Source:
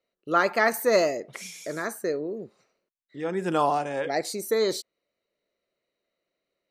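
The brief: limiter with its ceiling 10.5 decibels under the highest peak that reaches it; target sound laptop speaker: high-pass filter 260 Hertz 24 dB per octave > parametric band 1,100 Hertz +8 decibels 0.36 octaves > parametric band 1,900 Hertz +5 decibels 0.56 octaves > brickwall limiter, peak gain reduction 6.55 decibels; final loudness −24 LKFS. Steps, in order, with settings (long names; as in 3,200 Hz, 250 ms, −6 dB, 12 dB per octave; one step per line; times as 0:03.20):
brickwall limiter −18 dBFS
high-pass filter 260 Hz 24 dB per octave
parametric band 1,100 Hz +8 dB 0.36 octaves
parametric band 1,900 Hz +5 dB 0.56 octaves
level +7 dB
brickwall limiter −13 dBFS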